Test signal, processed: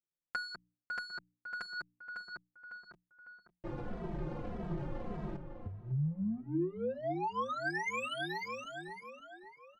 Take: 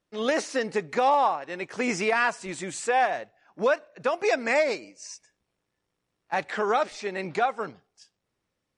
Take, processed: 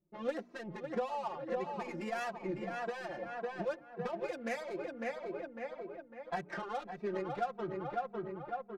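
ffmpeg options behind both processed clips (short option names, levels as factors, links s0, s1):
-filter_complex "[0:a]adynamicsmooth=sensitivity=2:basefreq=580,equalizer=f=210:w=0.36:g=6,bandreject=f=60:t=h:w=6,bandreject=f=120:t=h:w=6,bandreject=f=180:t=h:w=6,bandreject=f=240:t=h:w=6,bandreject=f=300:t=h:w=6,asplit=2[s0][s1];[s1]adelay=552,lowpass=f=2600:p=1,volume=0.355,asplit=2[s2][s3];[s3]adelay=552,lowpass=f=2600:p=1,volume=0.47,asplit=2[s4][s5];[s5]adelay=552,lowpass=f=2600:p=1,volume=0.47,asplit=2[s6][s7];[s7]adelay=552,lowpass=f=2600:p=1,volume=0.47,asplit=2[s8][s9];[s9]adelay=552,lowpass=f=2600:p=1,volume=0.47[s10];[s0][s2][s4][s6][s8][s10]amix=inputs=6:normalize=0,acompressor=threshold=0.0282:ratio=12,aecho=1:1:5.7:0.65,asplit=2[s11][s12];[s12]adelay=2.7,afreqshift=-1.7[s13];[s11][s13]amix=inputs=2:normalize=1,volume=0.891"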